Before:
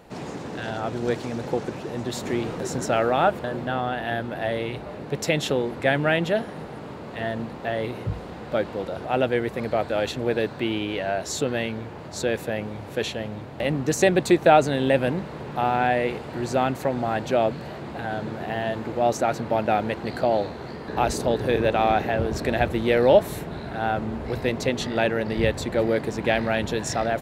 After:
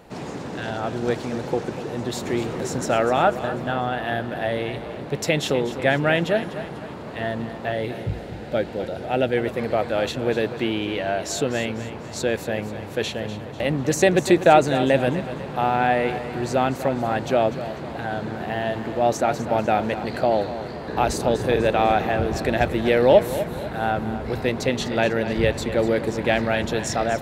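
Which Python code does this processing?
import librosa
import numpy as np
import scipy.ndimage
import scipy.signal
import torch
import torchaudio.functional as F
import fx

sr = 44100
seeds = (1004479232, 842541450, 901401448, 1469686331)

p1 = fx.peak_eq(x, sr, hz=1100.0, db=-13.0, octaves=0.34, at=(7.72, 9.37))
p2 = p1 + fx.echo_feedback(p1, sr, ms=247, feedback_pct=46, wet_db=-12.5, dry=0)
y = p2 * 10.0 ** (1.5 / 20.0)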